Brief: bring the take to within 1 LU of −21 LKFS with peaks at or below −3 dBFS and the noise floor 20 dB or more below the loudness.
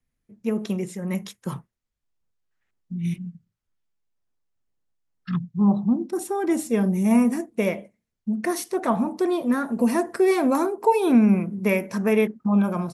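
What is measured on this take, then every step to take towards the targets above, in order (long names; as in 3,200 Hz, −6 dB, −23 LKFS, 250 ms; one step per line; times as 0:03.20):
integrated loudness −23.0 LKFS; sample peak −7.5 dBFS; target loudness −21.0 LKFS
→ level +2 dB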